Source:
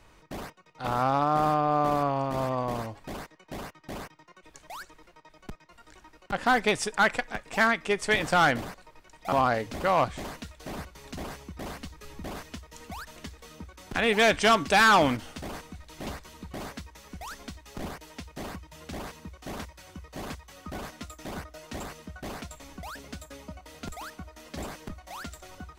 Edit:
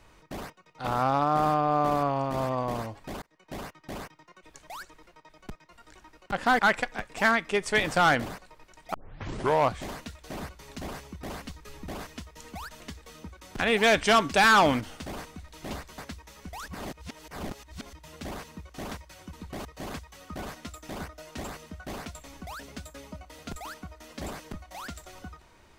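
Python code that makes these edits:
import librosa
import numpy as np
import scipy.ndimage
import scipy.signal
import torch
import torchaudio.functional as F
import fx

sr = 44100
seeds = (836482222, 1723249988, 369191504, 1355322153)

y = fx.edit(x, sr, fx.fade_in_span(start_s=3.22, length_s=0.31),
    fx.cut(start_s=6.59, length_s=0.36),
    fx.tape_start(start_s=9.3, length_s=0.73),
    fx.move(start_s=16.34, length_s=0.32, to_s=20.01),
    fx.reverse_span(start_s=17.36, length_s=1.25), tone=tone)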